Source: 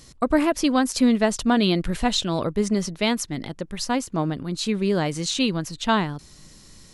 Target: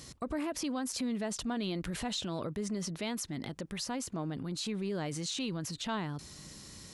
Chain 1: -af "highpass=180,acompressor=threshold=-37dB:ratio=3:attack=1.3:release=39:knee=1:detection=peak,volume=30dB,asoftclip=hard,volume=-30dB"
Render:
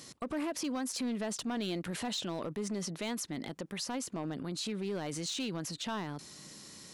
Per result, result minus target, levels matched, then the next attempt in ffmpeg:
gain into a clipping stage and back: distortion +26 dB; 125 Hz band −2.5 dB
-af "highpass=180,acompressor=threshold=-37dB:ratio=3:attack=1.3:release=39:knee=1:detection=peak,volume=24dB,asoftclip=hard,volume=-24dB"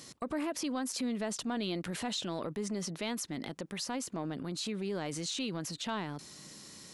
125 Hz band −2.5 dB
-af "highpass=60,acompressor=threshold=-37dB:ratio=3:attack=1.3:release=39:knee=1:detection=peak,volume=24dB,asoftclip=hard,volume=-24dB"

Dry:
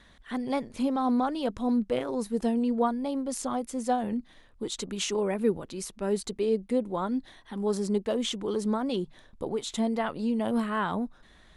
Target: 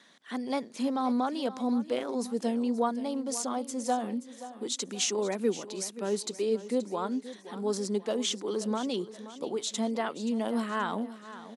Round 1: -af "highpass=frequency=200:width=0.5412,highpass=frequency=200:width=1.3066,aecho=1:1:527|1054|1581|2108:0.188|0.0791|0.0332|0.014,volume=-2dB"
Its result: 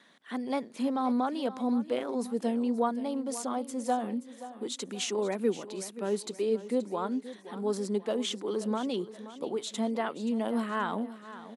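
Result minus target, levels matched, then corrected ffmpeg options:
8,000 Hz band −5.5 dB
-af "highpass=frequency=200:width=0.5412,highpass=frequency=200:width=1.3066,equalizer=frequency=5900:width_type=o:width=1.1:gain=7.5,aecho=1:1:527|1054|1581|2108:0.188|0.0791|0.0332|0.014,volume=-2dB"

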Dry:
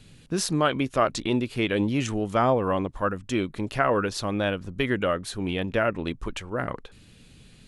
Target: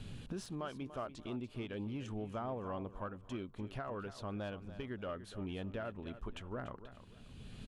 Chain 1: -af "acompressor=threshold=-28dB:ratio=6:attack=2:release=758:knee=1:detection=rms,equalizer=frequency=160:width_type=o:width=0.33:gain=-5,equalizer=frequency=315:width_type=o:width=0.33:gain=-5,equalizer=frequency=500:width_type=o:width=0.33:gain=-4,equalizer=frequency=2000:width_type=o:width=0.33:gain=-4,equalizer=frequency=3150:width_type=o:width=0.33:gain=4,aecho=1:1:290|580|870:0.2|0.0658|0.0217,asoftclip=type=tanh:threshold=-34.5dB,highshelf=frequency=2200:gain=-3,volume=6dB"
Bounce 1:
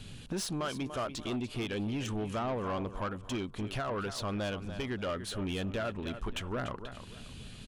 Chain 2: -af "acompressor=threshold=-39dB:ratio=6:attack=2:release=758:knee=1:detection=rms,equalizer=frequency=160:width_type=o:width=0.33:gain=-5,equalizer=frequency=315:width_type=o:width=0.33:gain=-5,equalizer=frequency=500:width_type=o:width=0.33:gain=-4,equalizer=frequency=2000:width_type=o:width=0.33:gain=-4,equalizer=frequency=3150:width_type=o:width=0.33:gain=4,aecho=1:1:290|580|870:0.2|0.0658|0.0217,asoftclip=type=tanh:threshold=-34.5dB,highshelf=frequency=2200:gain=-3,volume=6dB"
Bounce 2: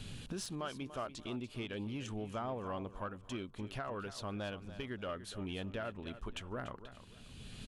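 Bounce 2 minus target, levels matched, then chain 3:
4,000 Hz band +5.0 dB
-af "acompressor=threshold=-39dB:ratio=6:attack=2:release=758:knee=1:detection=rms,equalizer=frequency=160:width_type=o:width=0.33:gain=-5,equalizer=frequency=315:width_type=o:width=0.33:gain=-5,equalizer=frequency=500:width_type=o:width=0.33:gain=-4,equalizer=frequency=2000:width_type=o:width=0.33:gain=-4,equalizer=frequency=3150:width_type=o:width=0.33:gain=4,aecho=1:1:290|580|870:0.2|0.0658|0.0217,asoftclip=type=tanh:threshold=-34.5dB,highshelf=frequency=2200:gain=-12,volume=6dB"

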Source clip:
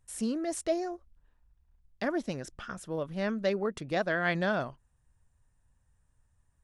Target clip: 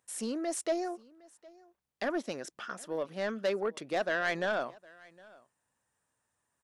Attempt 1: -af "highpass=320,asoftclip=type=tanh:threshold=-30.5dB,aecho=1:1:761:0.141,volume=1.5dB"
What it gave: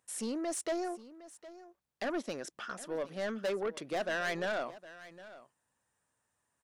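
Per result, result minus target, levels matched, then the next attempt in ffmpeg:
echo-to-direct +7 dB; soft clipping: distortion +6 dB
-af "highpass=320,asoftclip=type=tanh:threshold=-30.5dB,aecho=1:1:761:0.0631,volume=1.5dB"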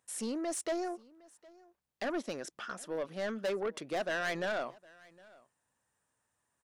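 soft clipping: distortion +6 dB
-af "highpass=320,asoftclip=type=tanh:threshold=-24dB,aecho=1:1:761:0.0631,volume=1.5dB"

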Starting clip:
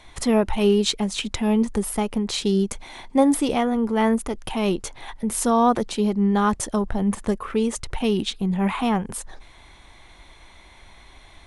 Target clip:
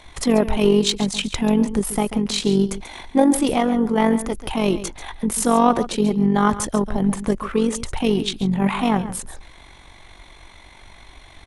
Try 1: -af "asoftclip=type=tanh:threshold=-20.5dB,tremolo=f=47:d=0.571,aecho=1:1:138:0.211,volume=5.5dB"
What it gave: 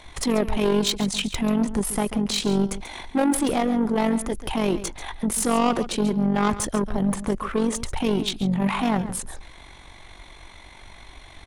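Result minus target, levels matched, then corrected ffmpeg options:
soft clipping: distortion +14 dB
-af "asoftclip=type=tanh:threshold=-9dB,tremolo=f=47:d=0.571,aecho=1:1:138:0.211,volume=5.5dB"

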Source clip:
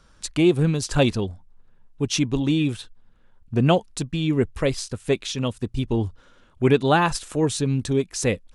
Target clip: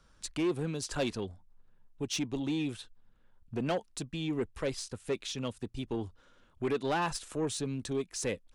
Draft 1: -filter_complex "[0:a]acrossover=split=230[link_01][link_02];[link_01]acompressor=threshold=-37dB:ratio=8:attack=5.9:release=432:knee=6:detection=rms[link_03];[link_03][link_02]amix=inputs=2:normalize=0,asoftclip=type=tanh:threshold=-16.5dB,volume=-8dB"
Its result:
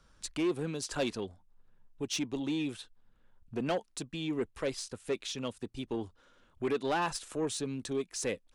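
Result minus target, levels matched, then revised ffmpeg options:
downward compressor: peak gain reduction +6.5 dB
-filter_complex "[0:a]acrossover=split=230[link_01][link_02];[link_01]acompressor=threshold=-29.5dB:ratio=8:attack=5.9:release=432:knee=6:detection=rms[link_03];[link_03][link_02]amix=inputs=2:normalize=0,asoftclip=type=tanh:threshold=-16.5dB,volume=-8dB"

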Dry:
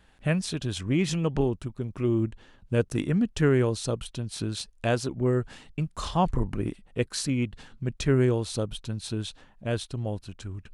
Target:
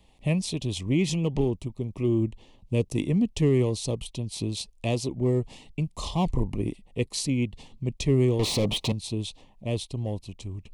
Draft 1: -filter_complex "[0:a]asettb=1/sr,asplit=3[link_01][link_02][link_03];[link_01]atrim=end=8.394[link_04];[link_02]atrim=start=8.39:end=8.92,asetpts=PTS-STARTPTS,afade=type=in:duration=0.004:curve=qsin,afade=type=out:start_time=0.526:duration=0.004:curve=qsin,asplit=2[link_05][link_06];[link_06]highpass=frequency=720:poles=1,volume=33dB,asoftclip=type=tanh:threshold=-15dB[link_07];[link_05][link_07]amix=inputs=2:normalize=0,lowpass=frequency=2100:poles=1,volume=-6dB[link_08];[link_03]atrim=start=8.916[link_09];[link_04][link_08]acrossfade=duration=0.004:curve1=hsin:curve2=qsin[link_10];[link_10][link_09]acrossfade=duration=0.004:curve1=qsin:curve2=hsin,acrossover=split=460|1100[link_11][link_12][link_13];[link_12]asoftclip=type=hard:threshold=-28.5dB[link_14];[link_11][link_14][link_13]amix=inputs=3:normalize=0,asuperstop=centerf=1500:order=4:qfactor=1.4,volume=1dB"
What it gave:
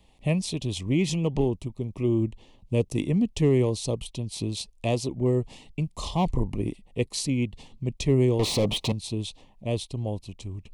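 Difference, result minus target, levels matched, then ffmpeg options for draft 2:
hard clipping: distortion −6 dB
-filter_complex "[0:a]asettb=1/sr,asplit=3[link_01][link_02][link_03];[link_01]atrim=end=8.394[link_04];[link_02]atrim=start=8.39:end=8.92,asetpts=PTS-STARTPTS,afade=type=in:duration=0.004:curve=qsin,afade=type=out:start_time=0.526:duration=0.004:curve=qsin,asplit=2[link_05][link_06];[link_06]highpass=frequency=720:poles=1,volume=33dB,asoftclip=type=tanh:threshold=-15dB[link_07];[link_05][link_07]amix=inputs=2:normalize=0,lowpass=frequency=2100:poles=1,volume=-6dB[link_08];[link_03]atrim=start=8.916[link_09];[link_04][link_08]acrossfade=duration=0.004:curve1=hsin:curve2=qsin[link_10];[link_10][link_09]acrossfade=duration=0.004:curve1=qsin:curve2=hsin,acrossover=split=460|1100[link_11][link_12][link_13];[link_12]asoftclip=type=hard:threshold=-35.5dB[link_14];[link_11][link_14][link_13]amix=inputs=3:normalize=0,asuperstop=centerf=1500:order=4:qfactor=1.4,volume=1dB"

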